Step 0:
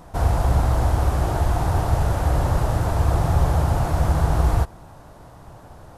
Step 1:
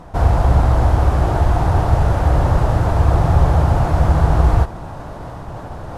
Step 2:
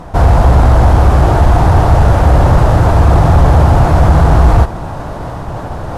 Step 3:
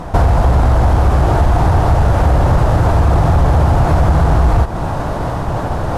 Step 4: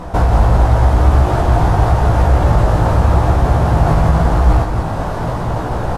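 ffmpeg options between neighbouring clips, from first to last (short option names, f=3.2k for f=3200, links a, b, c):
-af "aemphasis=mode=reproduction:type=50kf,areverse,acompressor=mode=upward:threshold=-26dB:ratio=2.5,areverse,volume=5.5dB"
-af "asoftclip=type=tanh:threshold=-2.5dB,apsyclip=10dB,volume=-1.5dB"
-af "acompressor=threshold=-12dB:ratio=6,volume=3.5dB"
-af "flanger=delay=16:depth=2.8:speed=0.9,aecho=1:1:172:0.501,volume=1.5dB"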